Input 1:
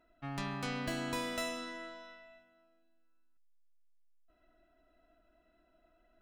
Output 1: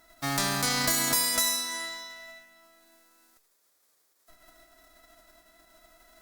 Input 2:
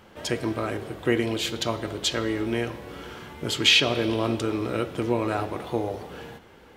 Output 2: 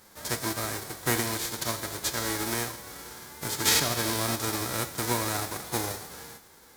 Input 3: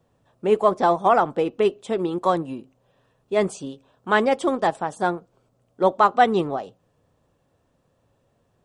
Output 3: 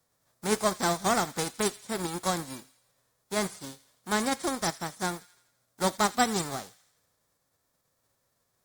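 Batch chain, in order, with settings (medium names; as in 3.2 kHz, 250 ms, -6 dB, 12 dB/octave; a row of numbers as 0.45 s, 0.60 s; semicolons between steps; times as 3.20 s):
formants flattened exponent 0.3; peaking EQ 2.8 kHz -10.5 dB 0.51 oct; feedback echo behind a high-pass 83 ms, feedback 55%, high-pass 1.9 kHz, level -17 dB; Opus 48 kbps 48 kHz; peak normalisation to -9 dBFS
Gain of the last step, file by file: +12.0 dB, -2.5 dB, -8.0 dB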